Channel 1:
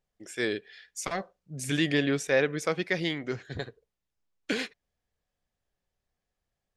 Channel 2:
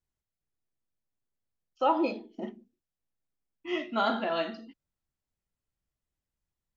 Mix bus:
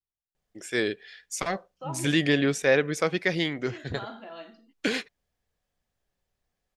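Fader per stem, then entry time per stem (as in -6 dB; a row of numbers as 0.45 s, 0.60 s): +3.0 dB, -12.5 dB; 0.35 s, 0.00 s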